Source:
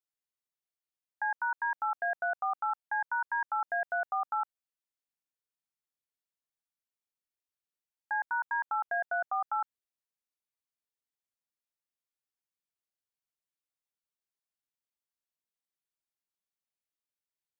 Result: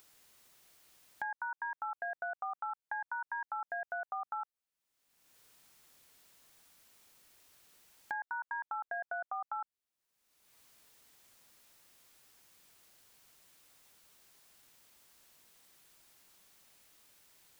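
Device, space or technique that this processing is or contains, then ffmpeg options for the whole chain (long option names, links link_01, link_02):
upward and downward compression: -af "acompressor=mode=upward:threshold=-44dB:ratio=2.5,acompressor=threshold=-38dB:ratio=5,volume=1.5dB"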